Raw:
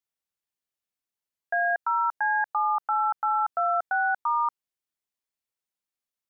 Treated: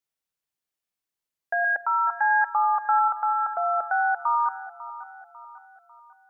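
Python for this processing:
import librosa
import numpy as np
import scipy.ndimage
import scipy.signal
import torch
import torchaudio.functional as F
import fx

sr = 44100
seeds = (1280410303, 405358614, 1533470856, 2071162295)

y = fx.comb(x, sr, ms=3.6, depth=0.64, at=(1.64, 3.08))
y = fx.echo_feedback(y, sr, ms=547, feedback_pct=46, wet_db=-15.5)
y = fx.room_shoebox(y, sr, seeds[0], volume_m3=3900.0, walls='furnished', distance_m=0.55)
y = y * librosa.db_to_amplitude(1.5)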